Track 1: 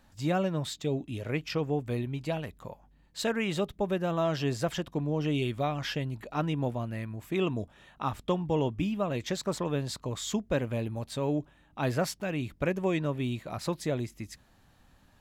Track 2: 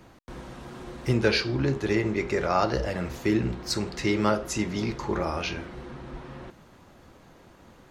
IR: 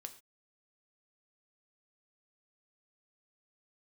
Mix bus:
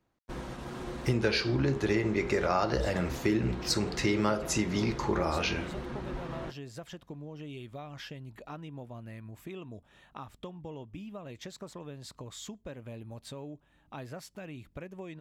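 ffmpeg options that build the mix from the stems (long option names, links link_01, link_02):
-filter_complex "[0:a]acompressor=threshold=-38dB:ratio=4,adelay=2150,volume=-4dB,asplit=2[link_01][link_02];[link_02]volume=-19dB[link_03];[1:a]agate=range=-26dB:threshold=-42dB:ratio=16:detection=peak,volume=1.5dB[link_04];[2:a]atrim=start_sample=2205[link_05];[link_03][link_05]afir=irnorm=-1:irlink=0[link_06];[link_01][link_04][link_06]amix=inputs=3:normalize=0,acompressor=threshold=-25dB:ratio=3"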